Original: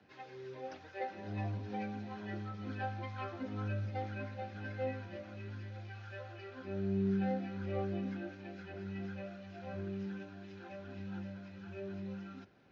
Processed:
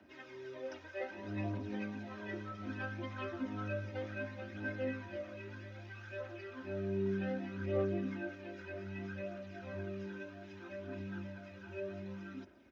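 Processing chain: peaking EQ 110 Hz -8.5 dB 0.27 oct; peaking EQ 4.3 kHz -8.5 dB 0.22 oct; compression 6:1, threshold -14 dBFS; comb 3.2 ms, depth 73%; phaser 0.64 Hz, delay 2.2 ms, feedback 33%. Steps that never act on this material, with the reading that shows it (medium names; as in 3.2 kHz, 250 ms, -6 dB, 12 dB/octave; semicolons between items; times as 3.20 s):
compression, threshold -14 dBFS: peak at its input -25.0 dBFS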